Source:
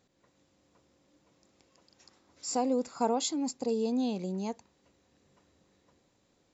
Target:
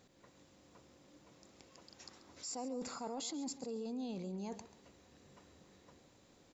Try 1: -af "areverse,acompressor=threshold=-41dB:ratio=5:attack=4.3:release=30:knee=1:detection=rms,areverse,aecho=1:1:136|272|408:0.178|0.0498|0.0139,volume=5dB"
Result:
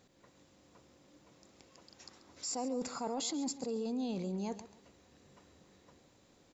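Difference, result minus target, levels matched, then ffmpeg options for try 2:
compressor: peak gain reduction -5 dB
-af "areverse,acompressor=threshold=-47.5dB:ratio=5:attack=4.3:release=30:knee=1:detection=rms,areverse,aecho=1:1:136|272|408:0.178|0.0498|0.0139,volume=5dB"

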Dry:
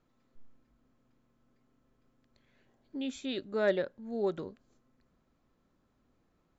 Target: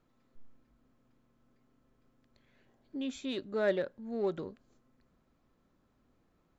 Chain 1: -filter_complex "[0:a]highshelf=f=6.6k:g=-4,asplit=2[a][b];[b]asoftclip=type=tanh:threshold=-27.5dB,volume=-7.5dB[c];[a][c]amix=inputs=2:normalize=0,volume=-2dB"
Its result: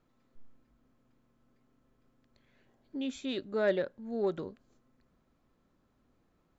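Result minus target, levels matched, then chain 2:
soft clip: distortion -7 dB
-filter_complex "[0:a]highshelf=f=6.6k:g=-4,asplit=2[a][b];[b]asoftclip=type=tanh:threshold=-39dB,volume=-7.5dB[c];[a][c]amix=inputs=2:normalize=0,volume=-2dB"

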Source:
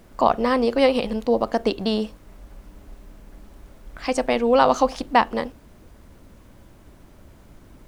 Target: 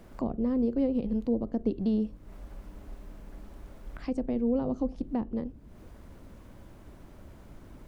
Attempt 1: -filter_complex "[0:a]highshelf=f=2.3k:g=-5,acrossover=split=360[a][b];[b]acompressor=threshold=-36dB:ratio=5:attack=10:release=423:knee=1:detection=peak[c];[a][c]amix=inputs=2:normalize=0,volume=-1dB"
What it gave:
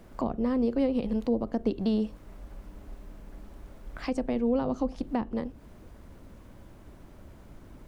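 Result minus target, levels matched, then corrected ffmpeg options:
compressor: peak gain reduction -9.5 dB
-filter_complex "[0:a]highshelf=f=2.3k:g=-5,acrossover=split=360[a][b];[b]acompressor=threshold=-48dB:ratio=5:attack=10:release=423:knee=1:detection=peak[c];[a][c]amix=inputs=2:normalize=0,volume=-1dB"

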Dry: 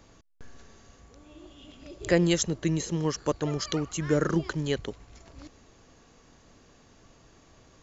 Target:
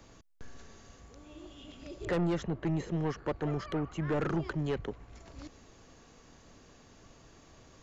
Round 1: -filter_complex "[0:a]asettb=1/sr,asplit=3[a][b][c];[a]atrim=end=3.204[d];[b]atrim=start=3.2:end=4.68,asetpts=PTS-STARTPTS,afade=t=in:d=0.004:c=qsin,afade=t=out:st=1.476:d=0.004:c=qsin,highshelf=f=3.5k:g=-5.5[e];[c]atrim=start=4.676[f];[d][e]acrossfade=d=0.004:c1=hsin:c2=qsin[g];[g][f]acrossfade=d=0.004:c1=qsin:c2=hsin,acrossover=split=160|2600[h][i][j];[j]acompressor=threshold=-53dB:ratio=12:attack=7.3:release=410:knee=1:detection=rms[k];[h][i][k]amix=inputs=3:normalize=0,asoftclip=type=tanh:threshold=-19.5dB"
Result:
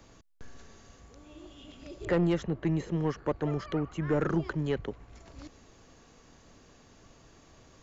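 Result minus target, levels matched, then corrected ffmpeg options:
soft clip: distortion -6 dB
-filter_complex "[0:a]asettb=1/sr,asplit=3[a][b][c];[a]atrim=end=3.204[d];[b]atrim=start=3.2:end=4.68,asetpts=PTS-STARTPTS,afade=t=in:d=0.004:c=qsin,afade=t=out:st=1.476:d=0.004:c=qsin,highshelf=f=3.5k:g=-5.5[e];[c]atrim=start=4.676[f];[d][e]acrossfade=d=0.004:c1=hsin:c2=qsin[g];[g][f]acrossfade=d=0.004:c1=qsin:c2=hsin,acrossover=split=160|2600[h][i][j];[j]acompressor=threshold=-53dB:ratio=12:attack=7.3:release=410:knee=1:detection=rms[k];[h][i][k]amix=inputs=3:normalize=0,asoftclip=type=tanh:threshold=-26dB"

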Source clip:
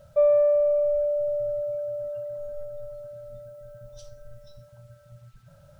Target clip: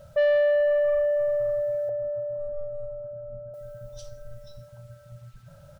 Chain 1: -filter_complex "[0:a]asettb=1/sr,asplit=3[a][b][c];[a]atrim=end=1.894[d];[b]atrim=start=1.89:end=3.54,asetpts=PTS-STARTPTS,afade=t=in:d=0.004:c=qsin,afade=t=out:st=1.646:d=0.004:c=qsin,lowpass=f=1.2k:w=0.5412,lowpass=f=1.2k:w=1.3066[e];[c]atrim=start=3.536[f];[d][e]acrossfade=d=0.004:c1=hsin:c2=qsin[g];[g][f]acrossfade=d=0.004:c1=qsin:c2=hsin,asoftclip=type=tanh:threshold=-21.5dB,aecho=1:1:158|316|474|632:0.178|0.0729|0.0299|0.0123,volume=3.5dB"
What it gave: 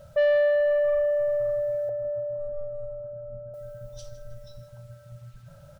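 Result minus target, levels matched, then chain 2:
echo-to-direct +10.5 dB
-filter_complex "[0:a]asettb=1/sr,asplit=3[a][b][c];[a]atrim=end=1.894[d];[b]atrim=start=1.89:end=3.54,asetpts=PTS-STARTPTS,afade=t=in:d=0.004:c=qsin,afade=t=out:st=1.646:d=0.004:c=qsin,lowpass=f=1.2k:w=0.5412,lowpass=f=1.2k:w=1.3066[e];[c]atrim=start=3.536[f];[d][e]acrossfade=d=0.004:c1=hsin:c2=qsin[g];[g][f]acrossfade=d=0.004:c1=qsin:c2=hsin,asoftclip=type=tanh:threshold=-21.5dB,aecho=1:1:158|316:0.0531|0.0218,volume=3.5dB"

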